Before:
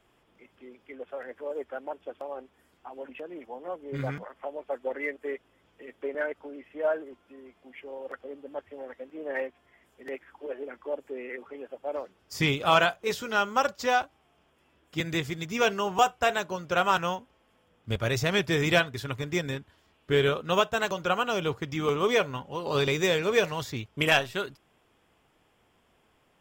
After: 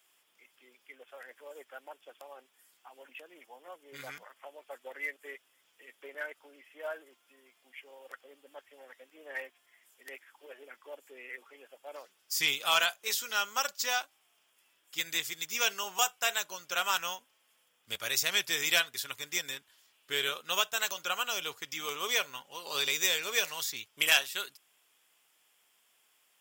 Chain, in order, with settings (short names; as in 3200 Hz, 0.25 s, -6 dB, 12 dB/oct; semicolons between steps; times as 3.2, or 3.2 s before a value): differentiator; gain +8.5 dB